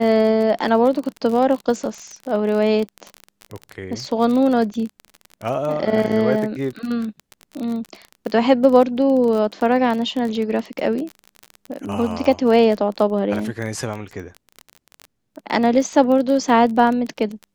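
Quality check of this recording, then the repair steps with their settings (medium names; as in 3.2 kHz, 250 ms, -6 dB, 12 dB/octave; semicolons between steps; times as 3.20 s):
crackle 29 per s -24 dBFS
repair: de-click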